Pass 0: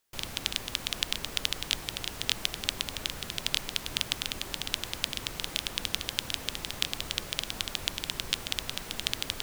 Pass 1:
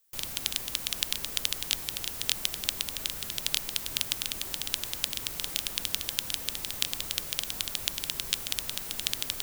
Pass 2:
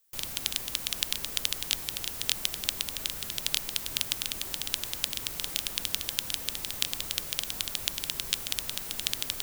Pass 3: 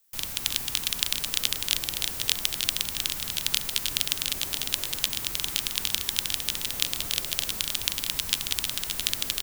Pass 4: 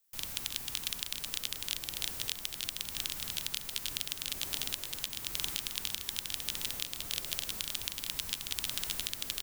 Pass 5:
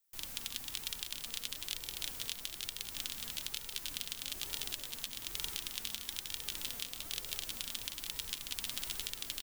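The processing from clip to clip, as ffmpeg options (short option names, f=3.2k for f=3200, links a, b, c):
-af "aemphasis=mode=production:type=50kf,volume=-4dB"
-af anull
-filter_complex "[0:a]acrossover=split=590|3700[a][b][c];[a]acrusher=samples=37:mix=1:aa=0.000001:lfo=1:lforange=59.2:lforate=0.39[d];[d][b][c]amix=inputs=3:normalize=0,aecho=1:1:312:0.531,volume=3dB"
-af "dynaudnorm=f=170:g=3:m=11.5dB,alimiter=limit=-5.5dB:level=0:latency=1:release=405,volume=-7.5dB"
-af "flanger=delay=2.1:depth=2.3:regen=52:speed=1.1:shape=sinusoidal,aecho=1:1:180:0.251"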